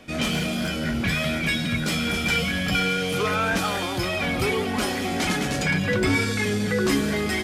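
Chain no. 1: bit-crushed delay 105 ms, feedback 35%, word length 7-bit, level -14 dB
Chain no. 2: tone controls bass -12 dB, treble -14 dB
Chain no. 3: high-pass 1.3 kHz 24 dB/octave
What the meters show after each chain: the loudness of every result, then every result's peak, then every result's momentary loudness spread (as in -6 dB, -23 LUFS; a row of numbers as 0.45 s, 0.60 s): -23.5 LUFS, -26.5 LUFS, -26.5 LUFS; -10.0 dBFS, -13.5 dBFS, -13.5 dBFS; 3 LU, 4 LU, 5 LU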